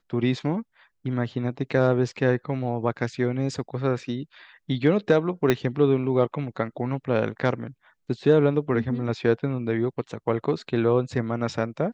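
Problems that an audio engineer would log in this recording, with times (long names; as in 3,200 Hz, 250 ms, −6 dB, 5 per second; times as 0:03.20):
0:05.50: click −7 dBFS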